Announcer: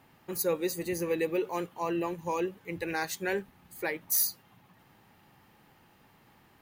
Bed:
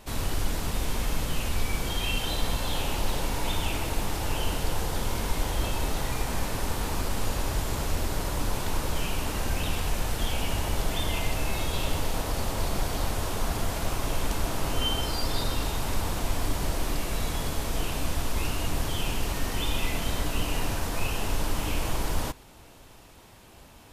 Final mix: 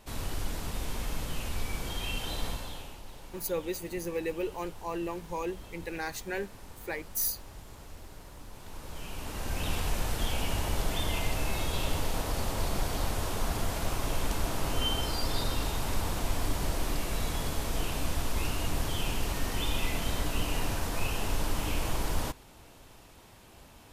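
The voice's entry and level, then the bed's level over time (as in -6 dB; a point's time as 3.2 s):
3.05 s, -3.5 dB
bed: 2.47 s -6 dB
3.02 s -19 dB
8.5 s -19 dB
9.72 s -2.5 dB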